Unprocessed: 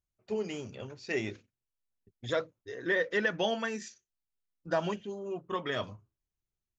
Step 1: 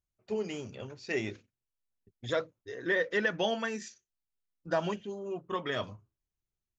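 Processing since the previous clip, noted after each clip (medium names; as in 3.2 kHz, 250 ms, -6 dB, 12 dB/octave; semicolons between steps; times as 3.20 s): no audible change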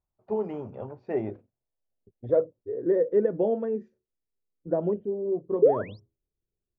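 painted sound rise, 5.62–6.00 s, 380–5800 Hz -24 dBFS; low-pass sweep 900 Hz -> 450 Hz, 0.64–2.86 s; trim +3 dB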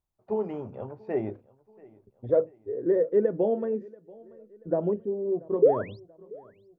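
feedback delay 684 ms, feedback 47%, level -23.5 dB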